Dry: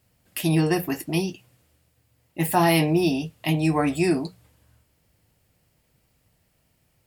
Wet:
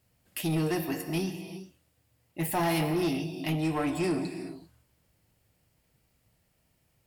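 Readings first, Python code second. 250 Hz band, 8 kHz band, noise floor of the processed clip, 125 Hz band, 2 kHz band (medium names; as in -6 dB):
-6.5 dB, -6.0 dB, -72 dBFS, -7.5 dB, -7.5 dB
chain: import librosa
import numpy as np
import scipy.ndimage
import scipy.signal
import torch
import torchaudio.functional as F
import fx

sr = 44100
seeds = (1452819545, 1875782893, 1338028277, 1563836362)

y = fx.rev_gated(x, sr, seeds[0], gate_ms=420, shape='flat', drr_db=9.0)
y = 10.0 ** (-18.0 / 20.0) * np.tanh(y / 10.0 ** (-18.0 / 20.0))
y = y * librosa.db_to_amplitude(-4.5)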